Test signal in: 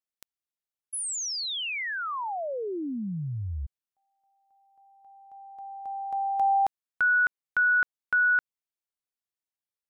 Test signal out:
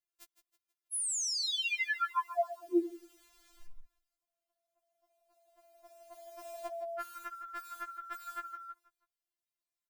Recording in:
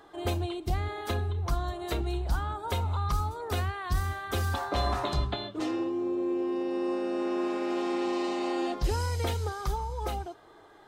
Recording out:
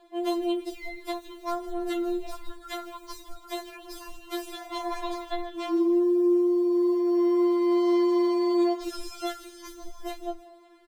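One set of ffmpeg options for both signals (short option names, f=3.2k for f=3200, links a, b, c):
-filter_complex "[0:a]asplit=5[a][b][c][d][e];[b]adelay=161,afreqshift=-56,volume=-13dB[f];[c]adelay=322,afreqshift=-112,volume=-20.7dB[g];[d]adelay=483,afreqshift=-168,volume=-28.5dB[h];[e]adelay=644,afreqshift=-224,volume=-36.2dB[i];[a][f][g][h][i]amix=inputs=5:normalize=0,acrusher=bits=8:mode=log:mix=0:aa=0.000001,afftfilt=real='re*4*eq(mod(b,16),0)':imag='im*4*eq(mod(b,16),0)':win_size=2048:overlap=0.75"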